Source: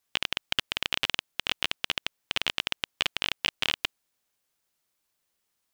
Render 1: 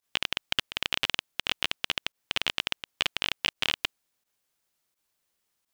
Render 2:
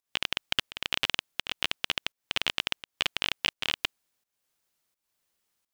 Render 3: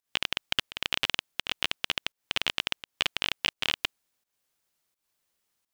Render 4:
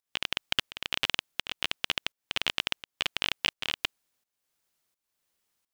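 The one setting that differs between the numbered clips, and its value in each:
pump, release: 68, 323, 217, 486 ms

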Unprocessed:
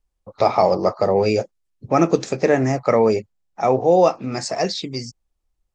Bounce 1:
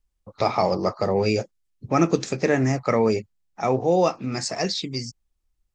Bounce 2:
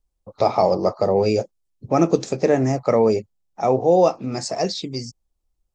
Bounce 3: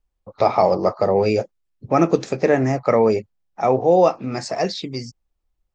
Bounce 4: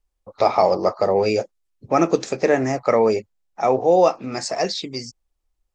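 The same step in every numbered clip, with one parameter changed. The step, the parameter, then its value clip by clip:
bell, frequency: 630, 1800, 9500, 130 Hz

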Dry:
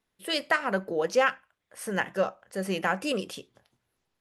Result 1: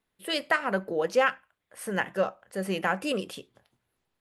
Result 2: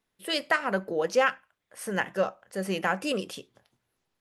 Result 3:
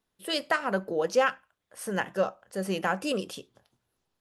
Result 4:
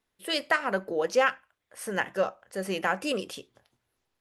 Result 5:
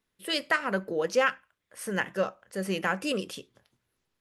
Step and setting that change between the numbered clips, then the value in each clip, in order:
bell, frequency: 5800, 62, 2100, 170, 750 Hz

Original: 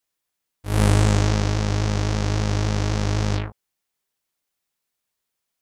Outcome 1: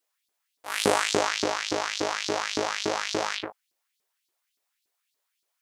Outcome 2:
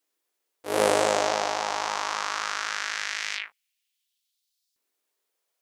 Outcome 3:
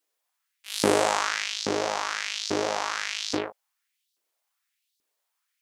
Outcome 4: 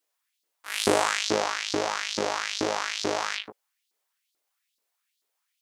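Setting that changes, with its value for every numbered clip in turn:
LFO high-pass, rate: 3.5, 0.21, 1.2, 2.3 Hz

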